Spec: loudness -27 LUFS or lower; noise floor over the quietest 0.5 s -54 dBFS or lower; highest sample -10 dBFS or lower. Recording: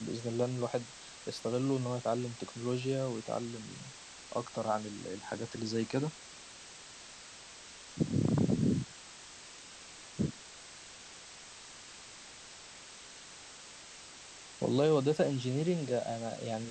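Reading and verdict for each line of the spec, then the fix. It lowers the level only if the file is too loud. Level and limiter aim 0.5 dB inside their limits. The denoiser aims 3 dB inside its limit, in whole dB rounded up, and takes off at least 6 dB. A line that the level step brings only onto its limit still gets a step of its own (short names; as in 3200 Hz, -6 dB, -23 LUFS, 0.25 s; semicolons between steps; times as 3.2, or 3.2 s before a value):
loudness -34.5 LUFS: OK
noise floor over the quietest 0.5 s -51 dBFS: fail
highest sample -17.0 dBFS: OK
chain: denoiser 6 dB, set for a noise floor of -51 dBFS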